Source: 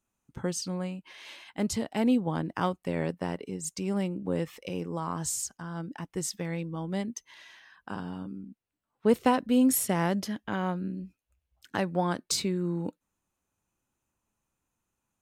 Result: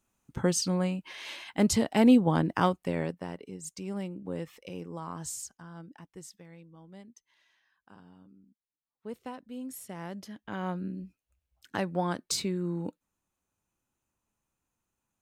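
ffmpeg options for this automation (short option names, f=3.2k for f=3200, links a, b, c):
-af "volume=20.5dB,afade=t=out:st=2.45:d=0.79:silence=0.281838,afade=t=out:st=5.31:d=1.14:silence=0.266073,afade=t=in:st=9.73:d=0.63:silence=0.421697,afade=t=in:st=10.36:d=0.4:silence=0.398107"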